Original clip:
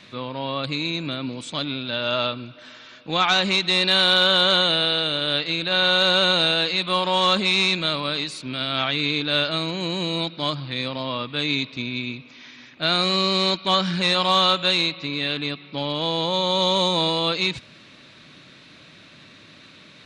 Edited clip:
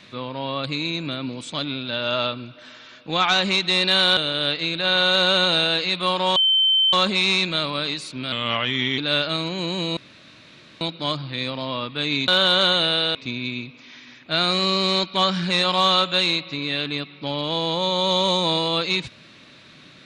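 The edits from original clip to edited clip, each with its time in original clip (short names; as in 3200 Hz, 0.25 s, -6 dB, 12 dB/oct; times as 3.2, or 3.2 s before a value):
4.17–5.04 move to 11.66
7.23 add tone 3090 Hz -14.5 dBFS 0.57 s
8.62–9.2 speed 88%
10.19 insert room tone 0.84 s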